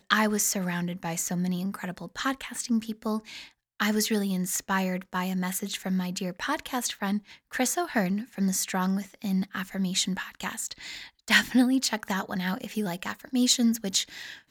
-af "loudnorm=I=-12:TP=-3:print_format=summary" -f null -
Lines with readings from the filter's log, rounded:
Input Integrated:    -27.9 LUFS
Input True Peak:      -4.9 dBTP
Input LRA:             2.6 LU
Input Threshold:     -38.1 LUFS